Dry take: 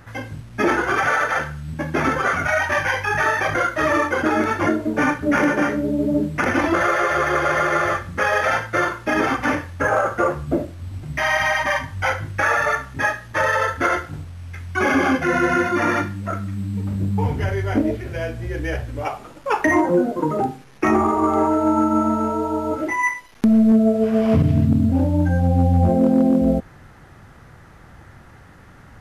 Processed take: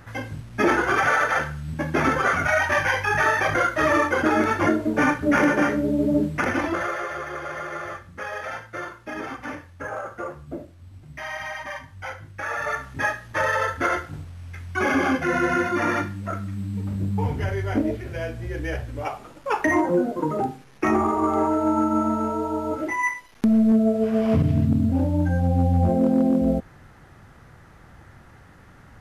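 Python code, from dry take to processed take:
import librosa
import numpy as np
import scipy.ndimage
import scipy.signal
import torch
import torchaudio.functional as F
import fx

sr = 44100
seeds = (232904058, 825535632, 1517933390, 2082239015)

y = fx.gain(x, sr, db=fx.line((6.24, -1.0), (7.27, -13.0), (12.36, -13.0), (12.87, -3.5)))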